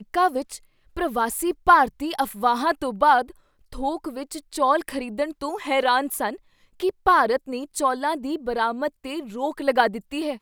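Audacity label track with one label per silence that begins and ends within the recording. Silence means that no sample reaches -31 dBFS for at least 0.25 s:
0.570000	0.970000	silence
3.300000	3.730000	silence
6.350000	6.800000	silence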